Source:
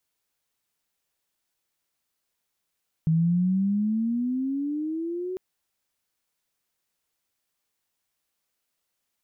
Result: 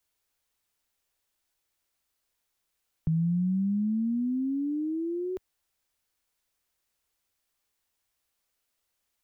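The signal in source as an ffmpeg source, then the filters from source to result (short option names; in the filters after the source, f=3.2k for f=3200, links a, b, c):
-f lavfi -i "aevalsrc='pow(10,(-18-10.5*t/2.3)/20)*sin(2*PI*158*2.3/(15*log(2)/12)*(exp(15*log(2)/12*t/2.3)-1))':d=2.3:s=44100"
-filter_complex "[0:a]equalizer=f=150:w=1.3:g=-6,acrossover=split=110[a][b];[a]acontrast=84[c];[c][b]amix=inputs=2:normalize=0"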